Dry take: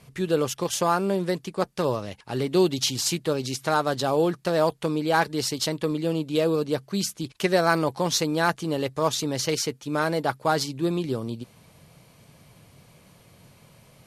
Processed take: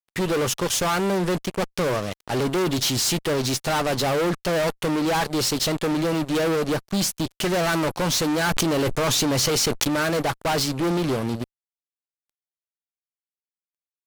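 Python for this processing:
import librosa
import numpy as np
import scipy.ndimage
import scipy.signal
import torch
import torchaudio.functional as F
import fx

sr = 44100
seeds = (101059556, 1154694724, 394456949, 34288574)

y = fx.fuzz(x, sr, gain_db=33.0, gate_db=-41.0)
y = fx.env_flatten(y, sr, amount_pct=100, at=(8.44, 9.88))
y = y * librosa.db_to_amplitude(-7.0)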